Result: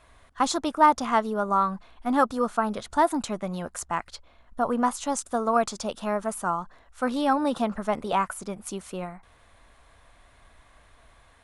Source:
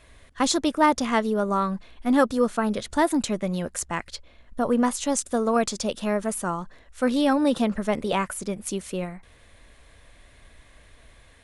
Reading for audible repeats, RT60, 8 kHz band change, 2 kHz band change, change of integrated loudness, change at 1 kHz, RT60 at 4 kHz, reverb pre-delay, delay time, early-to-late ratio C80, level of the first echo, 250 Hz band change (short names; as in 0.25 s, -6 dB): none, none, -5.0 dB, -2.5 dB, -1.5 dB, +3.0 dB, none, none, none, none, none, -5.0 dB